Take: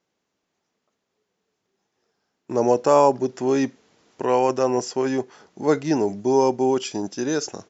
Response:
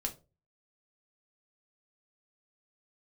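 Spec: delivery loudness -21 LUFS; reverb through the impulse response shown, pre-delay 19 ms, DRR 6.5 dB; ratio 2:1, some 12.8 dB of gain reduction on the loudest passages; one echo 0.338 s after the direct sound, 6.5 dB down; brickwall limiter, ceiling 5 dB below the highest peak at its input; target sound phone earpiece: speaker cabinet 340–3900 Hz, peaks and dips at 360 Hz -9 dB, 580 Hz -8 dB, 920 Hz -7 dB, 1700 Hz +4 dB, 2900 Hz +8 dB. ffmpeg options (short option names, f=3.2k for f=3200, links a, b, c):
-filter_complex "[0:a]acompressor=threshold=-36dB:ratio=2,alimiter=limit=-21.5dB:level=0:latency=1,aecho=1:1:338:0.473,asplit=2[a][b];[1:a]atrim=start_sample=2205,adelay=19[c];[b][c]afir=irnorm=-1:irlink=0,volume=-7.5dB[d];[a][d]amix=inputs=2:normalize=0,highpass=340,equalizer=f=360:t=q:w=4:g=-9,equalizer=f=580:t=q:w=4:g=-8,equalizer=f=920:t=q:w=4:g=-7,equalizer=f=1.7k:t=q:w=4:g=4,equalizer=f=2.9k:t=q:w=4:g=8,lowpass=f=3.9k:w=0.5412,lowpass=f=3.9k:w=1.3066,volume=17.5dB"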